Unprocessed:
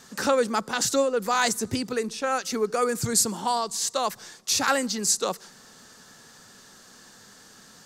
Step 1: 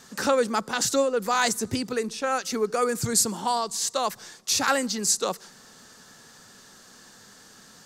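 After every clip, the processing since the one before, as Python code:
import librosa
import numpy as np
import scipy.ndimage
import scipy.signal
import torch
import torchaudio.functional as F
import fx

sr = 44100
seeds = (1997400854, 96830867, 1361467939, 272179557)

y = x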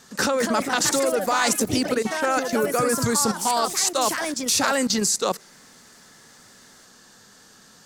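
y = fx.level_steps(x, sr, step_db=15)
y = fx.echo_pitch(y, sr, ms=243, semitones=3, count=3, db_per_echo=-6.0)
y = F.gain(torch.from_numpy(y), 8.5).numpy()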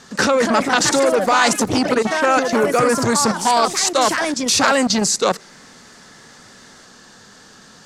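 y = fx.air_absorb(x, sr, metres=55.0)
y = fx.transformer_sat(y, sr, knee_hz=970.0)
y = F.gain(torch.from_numpy(y), 8.0).numpy()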